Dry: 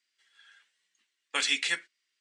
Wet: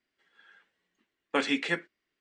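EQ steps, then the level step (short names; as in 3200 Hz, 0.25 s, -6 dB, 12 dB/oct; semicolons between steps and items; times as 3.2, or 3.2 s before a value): LPF 2000 Hz 6 dB/oct; tilt shelf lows +10 dB; +7.5 dB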